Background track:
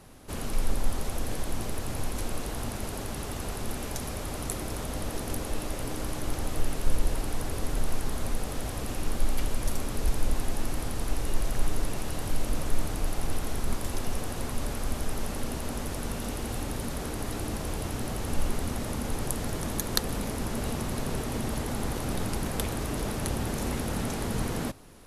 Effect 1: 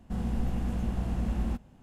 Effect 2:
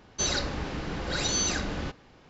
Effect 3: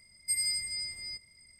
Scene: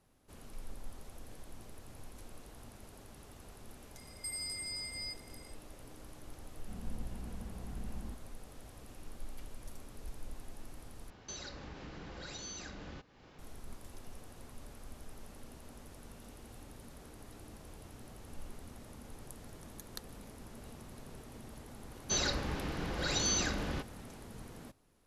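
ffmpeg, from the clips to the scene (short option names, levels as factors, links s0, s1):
-filter_complex "[2:a]asplit=2[s0][s1];[0:a]volume=0.112[s2];[3:a]acompressor=threshold=0.0126:ratio=6:attack=3.2:release=140:knee=1:detection=peak[s3];[s0]acompressor=threshold=0.00562:ratio=3:attack=8.9:release=244:knee=1:detection=rms[s4];[s2]asplit=2[s5][s6];[s5]atrim=end=11.104[s7];[s4]atrim=end=2.29,asetpts=PTS-STARTPTS,volume=0.75[s8];[s6]atrim=start=13.386[s9];[s3]atrim=end=1.59,asetpts=PTS-STARTPTS,afade=t=in:d=0.004:c=hsin,afade=t=out:st=1.586:d=0.004:c=hsin,adelay=3960[s10];[1:a]atrim=end=1.82,asetpts=PTS-STARTPTS,volume=0.188,afade=t=in:d=0.004:c=hsin,afade=t=out:st=1.816:d=0.004:c=hsin,adelay=290178S[s11];[s1]atrim=end=2.29,asetpts=PTS-STARTPTS,volume=0.596,afade=t=in:d=0.004:c=hsin,afade=t=out:st=2.286:d=0.004:c=hsin,adelay=21910[s12];[s7][s8]acrossfade=d=0.004:c1=hsin:c2=hsin[s13];[s13][s9]acrossfade=d=0.004:c1=hsin:c2=hsin[s14];[s14][s10][s11][s12]amix=inputs=4:normalize=0"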